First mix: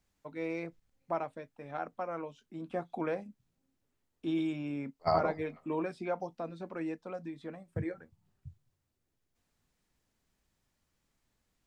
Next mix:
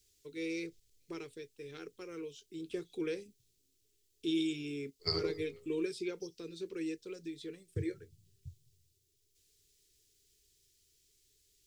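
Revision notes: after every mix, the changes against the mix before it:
second voice: send +10.5 dB; master: add EQ curve 110 Hz 0 dB, 230 Hz -13 dB, 420 Hz +9 dB, 650 Hz -30 dB, 3300 Hz +9 dB, 5300 Hz +13 dB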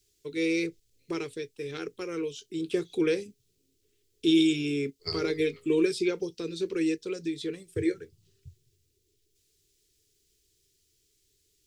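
first voice +11.0 dB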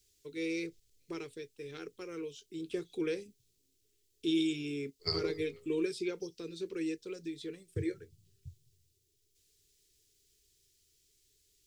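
first voice -8.5 dB

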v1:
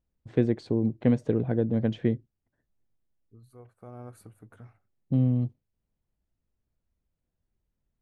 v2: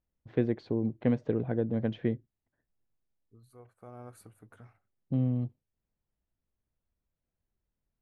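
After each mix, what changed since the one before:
first voice: add air absorption 190 m; master: add low shelf 450 Hz -5.5 dB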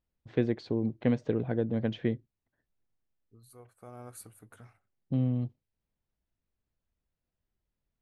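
master: add high shelf 3500 Hz +12 dB

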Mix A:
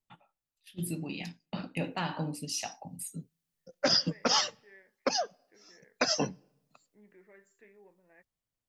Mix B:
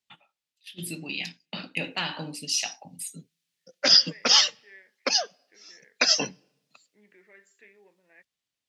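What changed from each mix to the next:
master: add weighting filter D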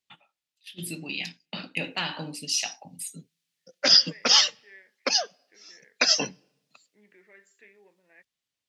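none

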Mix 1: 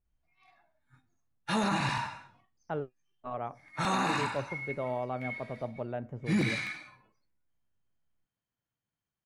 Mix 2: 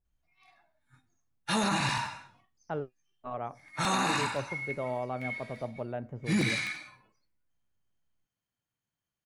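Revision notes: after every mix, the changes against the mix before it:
background: add high shelf 3700 Hz +8.5 dB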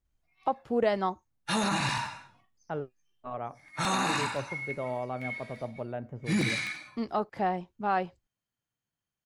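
first voice: unmuted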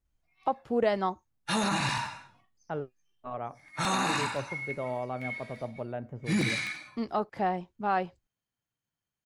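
none

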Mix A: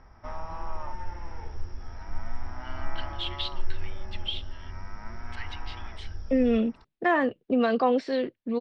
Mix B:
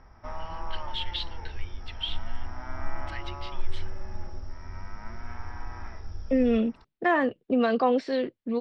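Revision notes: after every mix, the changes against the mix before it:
first voice: entry -2.25 s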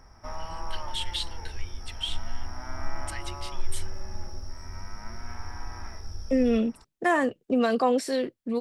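master: remove LPF 4100 Hz 24 dB/oct

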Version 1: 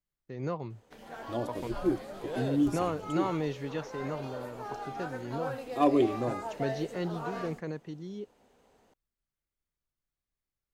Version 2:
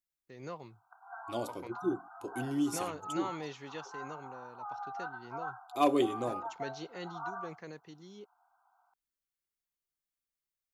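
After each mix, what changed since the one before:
first voice -6.0 dB; background: add brick-wall FIR band-pass 670–1600 Hz; master: add tilt +2.5 dB/oct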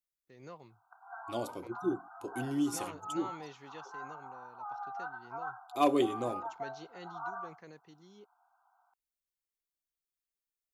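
first voice -6.0 dB

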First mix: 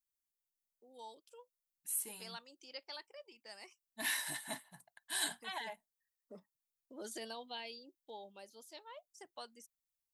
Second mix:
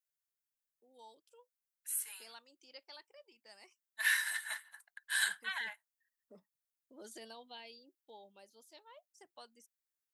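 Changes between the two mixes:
first voice -5.5 dB; second voice: add resonant high-pass 1500 Hz, resonance Q 3.4

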